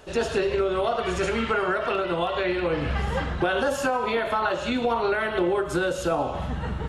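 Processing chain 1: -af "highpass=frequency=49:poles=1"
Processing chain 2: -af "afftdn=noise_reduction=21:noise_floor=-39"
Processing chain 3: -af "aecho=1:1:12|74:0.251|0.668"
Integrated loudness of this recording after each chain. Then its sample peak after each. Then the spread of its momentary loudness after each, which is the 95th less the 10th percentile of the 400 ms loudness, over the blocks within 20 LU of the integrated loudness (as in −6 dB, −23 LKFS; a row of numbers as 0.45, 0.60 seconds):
−25.5, −25.5, −23.5 LKFS; −12.5, −12.5, −10.0 dBFS; 3, 3, 2 LU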